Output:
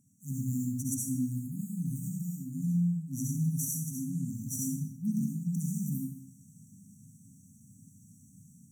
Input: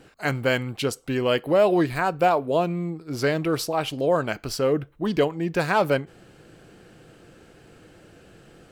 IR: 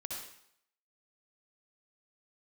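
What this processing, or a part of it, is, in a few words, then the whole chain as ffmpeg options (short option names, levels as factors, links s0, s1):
far laptop microphone: -filter_complex "[1:a]atrim=start_sample=2205[s0];[0:a][s0]afir=irnorm=-1:irlink=0,highpass=f=100:w=0.5412,highpass=f=100:w=1.3066,dynaudnorm=f=210:g=3:m=2,afftfilt=real='re*(1-between(b*sr/4096,270,5700))':imag='im*(1-between(b*sr/4096,270,5700))':win_size=4096:overlap=0.75,highshelf=f=5800:g=6,volume=0.501"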